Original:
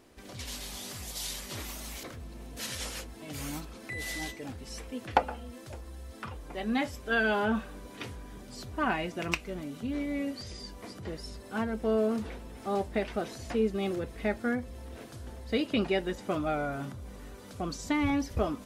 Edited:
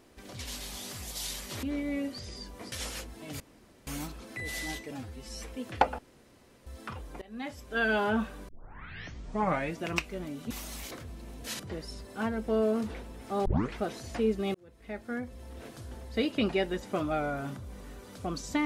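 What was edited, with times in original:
1.63–2.72 s: swap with 9.86–10.95 s
3.40 s: insert room tone 0.47 s
4.44–4.79 s: stretch 1.5×
5.34–6.02 s: room tone
6.57–7.27 s: fade in, from -23 dB
7.84 s: tape start 1.31 s
12.81 s: tape start 0.30 s
13.90–15.02 s: fade in

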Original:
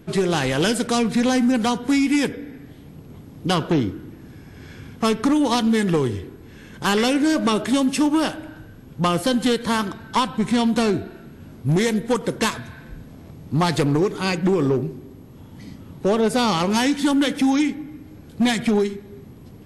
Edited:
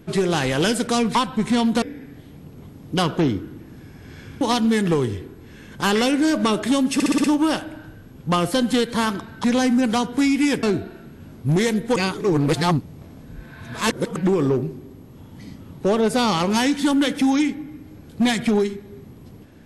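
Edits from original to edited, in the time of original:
1.15–2.34 s: swap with 10.16–10.83 s
4.93–5.43 s: delete
7.96 s: stutter 0.06 s, 6 plays
12.16–14.36 s: reverse

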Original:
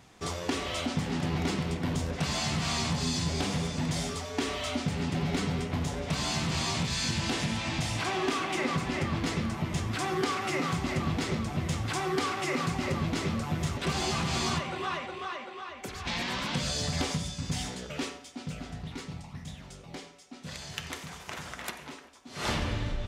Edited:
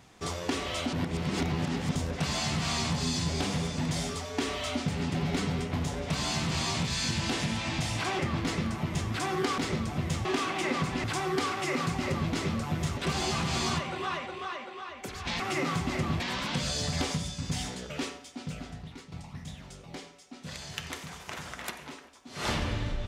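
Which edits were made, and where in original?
0.93–1.95 s: reverse
8.19–8.98 s: move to 11.84 s
10.37–11.17 s: move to 16.20 s
18.57–19.12 s: fade out, to -10.5 dB

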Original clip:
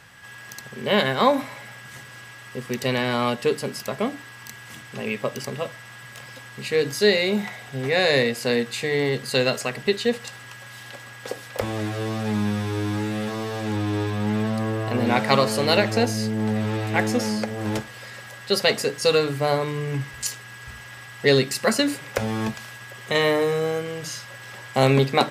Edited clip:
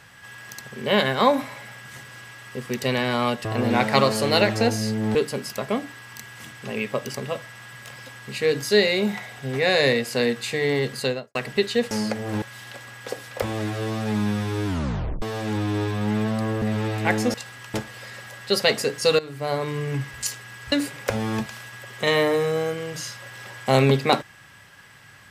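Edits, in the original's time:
9.24–9.65 s: studio fade out
10.21–10.61 s: swap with 17.23–17.74 s
12.85 s: tape stop 0.56 s
14.81–16.51 s: move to 3.45 s
19.19–19.75 s: fade in, from -17 dB
20.72–21.80 s: delete

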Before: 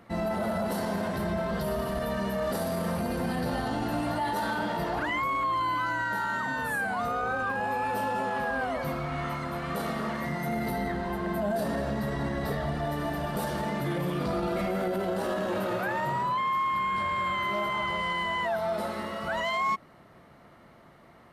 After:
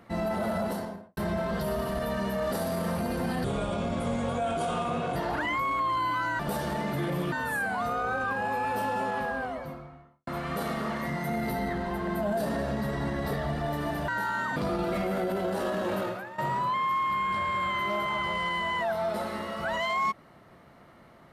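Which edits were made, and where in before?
0.59–1.17 s: studio fade out
3.44–4.80 s: speed 79%
6.03–6.51 s: swap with 13.27–14.20 s
8.23–9.46 s: studio fade out
15.66–16.02 s: fade out quadratic, to -14 dB

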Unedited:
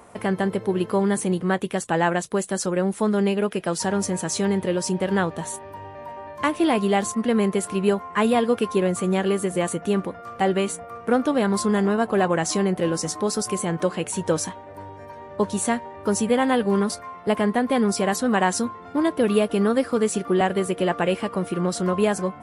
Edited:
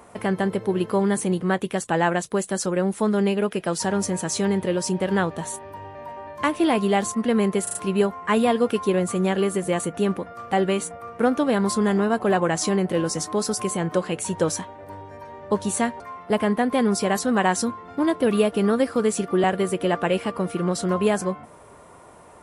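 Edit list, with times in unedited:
7.63 s: stutter 0.04 s, 4 plays
15.88–16.97 s: delete

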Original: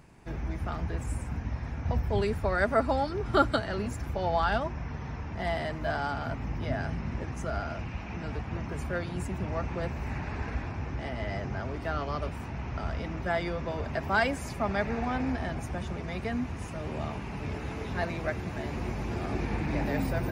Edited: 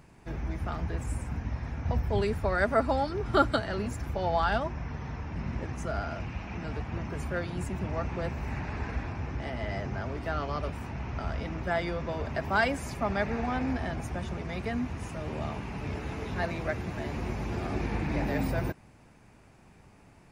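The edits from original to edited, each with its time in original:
5.36–6.95 s: delete

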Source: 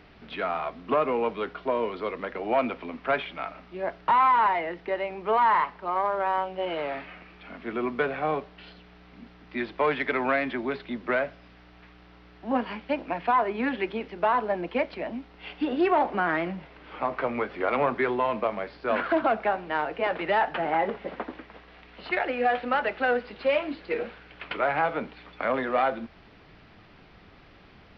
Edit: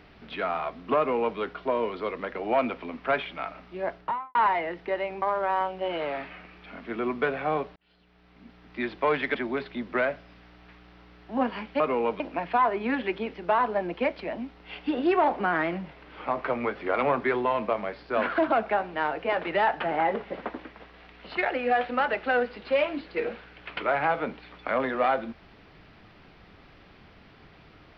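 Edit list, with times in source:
0.98–1.38 s: copy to 12.94 s
3.88–4.35 s: studio fade out
5.22–5.99 s: delete
8.53–9.57 s: fade in
10.12–10.49 s: delete

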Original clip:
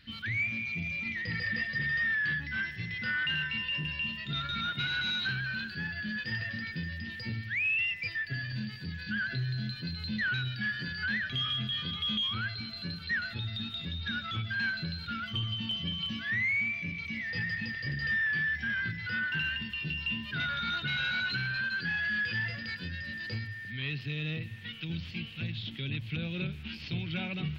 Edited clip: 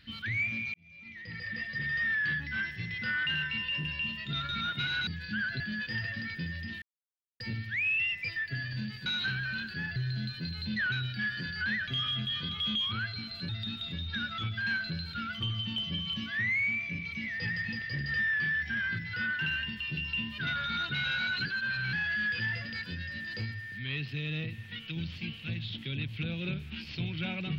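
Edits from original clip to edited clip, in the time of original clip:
0.74–2.16 s: fade in
5.07–5.97 s: swap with 8.85–9.38 s
7.19 s: insert silence 0.58 s
12.91–13.42 s: delete
21.38–21.86 s: reverse

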